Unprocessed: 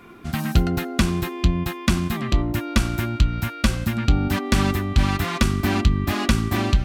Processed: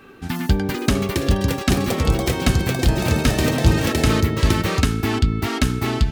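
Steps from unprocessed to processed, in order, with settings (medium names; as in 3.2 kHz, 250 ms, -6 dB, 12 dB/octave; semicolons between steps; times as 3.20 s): ever faster or slower copies 596 ms, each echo +6 st, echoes 3; tape speed +12%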